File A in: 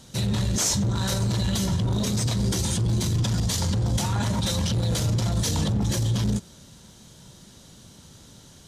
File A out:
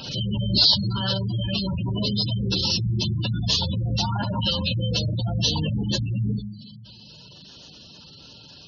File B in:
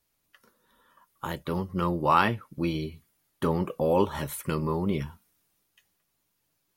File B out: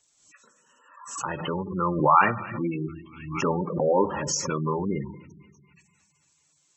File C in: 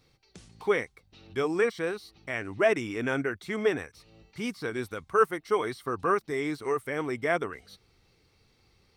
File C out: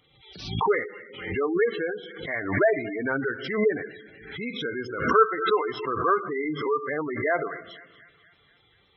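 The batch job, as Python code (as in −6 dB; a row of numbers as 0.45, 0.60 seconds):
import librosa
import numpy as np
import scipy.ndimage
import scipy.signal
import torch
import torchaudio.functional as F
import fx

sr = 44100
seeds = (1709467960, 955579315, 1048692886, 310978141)

p1 = fx.freq_compress(x, sr, knee_hz=1900.0, ratio=1.5)
p2 = fx.highpass(p1, sr, hz=45.0, slope=6)
p3 = fx.low_shelf(p2, sr, hz=300.0, db=-9.0)
p4 = p3 + fx.echo_wet_highpass(p3, sr, ms=242, feedback_pct=57, hz=1800.0, wet_db=-14.5, dry=0)
p5 = fx.room_shoebox(p4, sr, seeds[0], volume_m3=560.0, walls='mixed', distance_m=0.39)
p6 = fx.spec_gate(p5, sr, threshold_db=-15, keep='strong')
p7 = fx.bass_treble(p6, sr, bass_db=1, treble_db=7)
p8 = fx.pre_swell(p7, sr, db_per_s=75.0)
y = F.gain(torch.from_numpy(p8), 4.5).numpy()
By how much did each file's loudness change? +1.5, +2.5, +3.5 LU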